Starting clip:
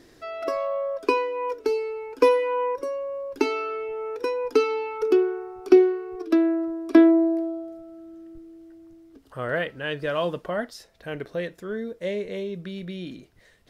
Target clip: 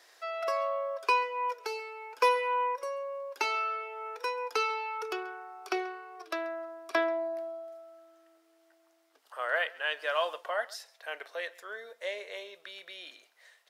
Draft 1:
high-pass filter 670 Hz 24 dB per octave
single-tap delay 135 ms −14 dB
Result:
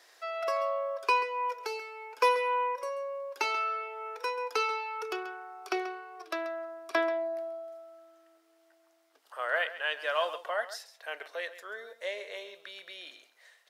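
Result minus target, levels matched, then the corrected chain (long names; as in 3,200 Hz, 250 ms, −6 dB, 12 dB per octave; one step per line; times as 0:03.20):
echo-to-direct +8 dB
high-pass filter 670 Hz 24 dB per octave
single-tap delay 135 ms −22 dB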